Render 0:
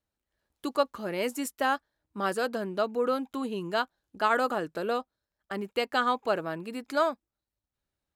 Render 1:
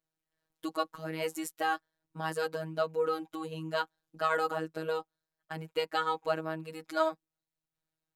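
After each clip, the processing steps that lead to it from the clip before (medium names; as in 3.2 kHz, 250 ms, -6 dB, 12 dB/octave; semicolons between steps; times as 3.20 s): robot voice 159 Hz; trim -1.5 dB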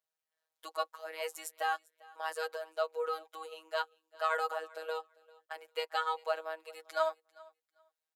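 steep high-pass 490 Hz 36 dB/octave; feedback delay 396 ms, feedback 19%, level -23.5 dB; trim -2 dB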